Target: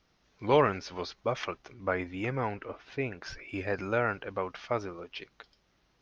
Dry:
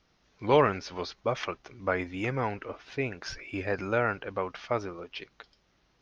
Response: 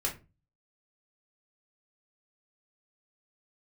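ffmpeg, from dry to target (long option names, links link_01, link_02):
-filter_complex "[0:a]asettb=1/sr,asplit=3[link_01][link_02][link_03];[link_01]atrim=end=1.734[link_04];[link_02]atrim=start=1.73:end=3.49,asetpts=PTS-STARTPTS,afade=type=in:duration=0.004:curve=qsin,afade=type=out:start_time=1.756:duration=0.004:curve=qsin,highshelf=frequency=5600:gain=-8.5[link_05];[link_03]atrim=start=3.486[link_06];[link_04][link_05]acrossfade=duration=0.004:curve1=hsin:curve2=qsin[link_07];[link_07][link_06]acrossfade=duration=0.004:curve1=qsin:curve2=hsin,volume=-1.5dB"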